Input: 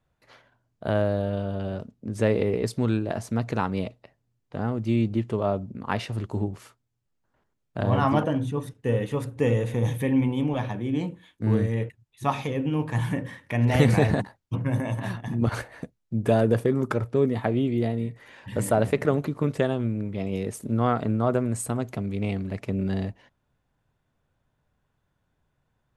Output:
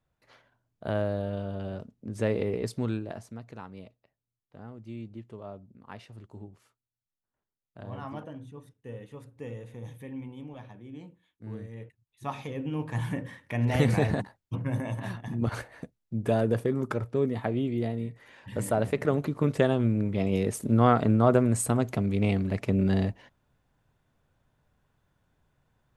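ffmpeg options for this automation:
ffmpeg -i in.wav -af "volume=14.5dB,afade=type=out:start_time=2.79:duration=0.61:silence=0.251189,afade=type=in:start_time=11.7:duration=1.37:silence=0.237137,afade=type=in:start_time=18.93:duration=1.07:silence=0.446684" out.wav

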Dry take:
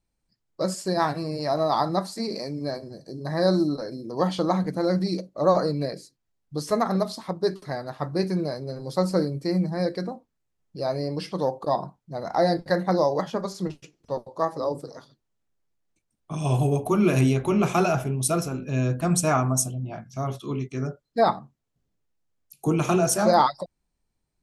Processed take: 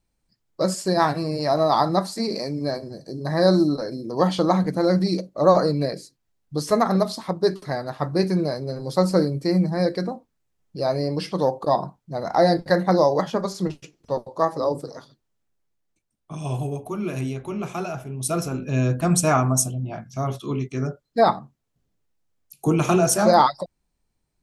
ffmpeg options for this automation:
ffmpeg -i in.wav -af "volume=14.5dB,afade=type=out:start_time=14.83:duration=2.04:silence=0.266073,afade=type=in:start_time=18.07:duration=0.49:silence=0.298538" out.wav

